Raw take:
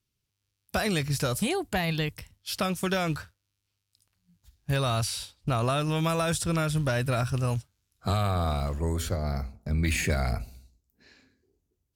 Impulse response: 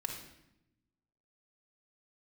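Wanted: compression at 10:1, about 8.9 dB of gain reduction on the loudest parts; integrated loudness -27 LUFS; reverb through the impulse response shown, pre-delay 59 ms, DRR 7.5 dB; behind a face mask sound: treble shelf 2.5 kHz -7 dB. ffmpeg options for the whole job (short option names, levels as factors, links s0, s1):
-filter_complex "[0:a]acompressor=threshold=0.0251:ratio=10,asplit=2[s0][s1];[1:a]atrim=start_sample=2205,adelay=59[s2];[s1][s2]afir=irnorm=-1:irlink=0,volume=0.355[s3];[s0][s3]amix=inputs=2:normalize=0,highshelf=f=2500:g=-7,volume=2.99"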